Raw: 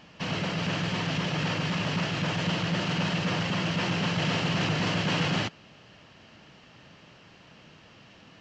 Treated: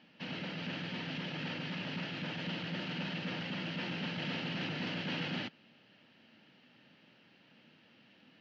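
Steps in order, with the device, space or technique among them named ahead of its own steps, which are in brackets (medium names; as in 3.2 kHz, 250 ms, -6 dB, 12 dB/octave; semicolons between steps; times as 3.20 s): kitchen radio (cabinet simulation 190–4500 Hz, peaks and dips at 240 Hz +6 dB, 420 Hz -4 dB, 680 Hz -5 dB, 1.1 kHz -10 dB); trim -8.5 dB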